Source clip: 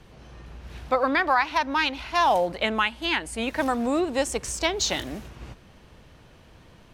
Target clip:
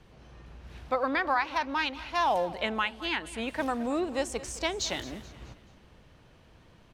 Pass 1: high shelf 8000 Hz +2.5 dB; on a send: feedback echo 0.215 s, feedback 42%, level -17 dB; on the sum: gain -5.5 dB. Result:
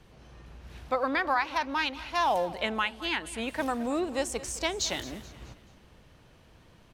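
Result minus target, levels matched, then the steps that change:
8000 Hz band +3.0 dB
change: high shelf 8000 Hz -5 dB

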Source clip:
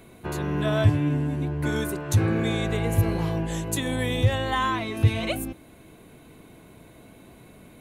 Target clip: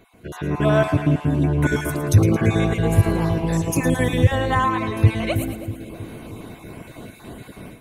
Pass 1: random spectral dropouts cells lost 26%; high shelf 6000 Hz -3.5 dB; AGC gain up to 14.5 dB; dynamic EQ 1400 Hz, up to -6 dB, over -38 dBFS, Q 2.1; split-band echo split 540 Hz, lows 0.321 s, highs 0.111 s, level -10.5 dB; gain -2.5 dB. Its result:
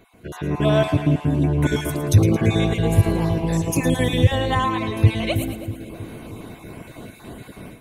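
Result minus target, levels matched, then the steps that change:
4000 Hz band +4.5 dB
change: dynamic EQ 3400 Hz, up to -6 dB, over -38 dBFS, Q 2.1

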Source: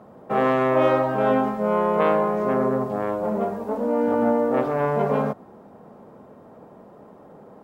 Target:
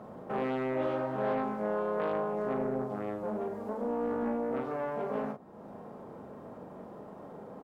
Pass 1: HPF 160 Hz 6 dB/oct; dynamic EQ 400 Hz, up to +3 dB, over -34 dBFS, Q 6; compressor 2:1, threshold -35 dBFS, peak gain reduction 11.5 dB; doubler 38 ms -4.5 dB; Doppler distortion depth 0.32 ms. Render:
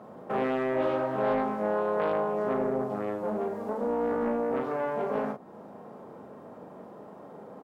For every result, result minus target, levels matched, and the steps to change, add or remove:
compressor: peak gain reduction -4.5 dB; 125 Hz band -3.0 dB
change: compressor 2:1, threshold -44 dBFS, peak gain reduction 16 dB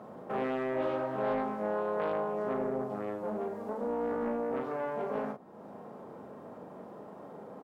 125 Hz band -3.0 dB
remove: HPF 160 Hz 6 dB/oct

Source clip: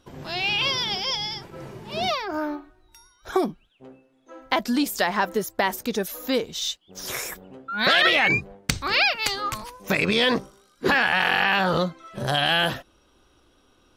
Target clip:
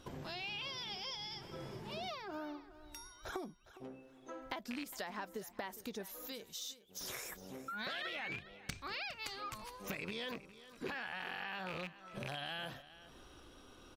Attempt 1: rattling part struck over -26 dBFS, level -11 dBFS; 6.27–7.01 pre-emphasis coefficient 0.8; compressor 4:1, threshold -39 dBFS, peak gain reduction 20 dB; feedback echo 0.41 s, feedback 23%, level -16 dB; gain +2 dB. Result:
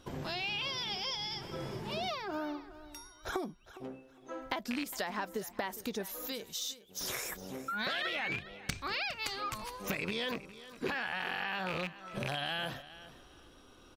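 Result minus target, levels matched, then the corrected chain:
compressor: peak gain reduction -7 dB
rattling part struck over -26 dBFS, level -11 dBFS; 6.27–7.01 pre-emphasis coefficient 0.8; compressor 4:1, threshold -48 dBFS, peak gain reduction 26.5 dB; feedback echo 0.41 s, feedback 23%, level -16 dB; gain +2 dB

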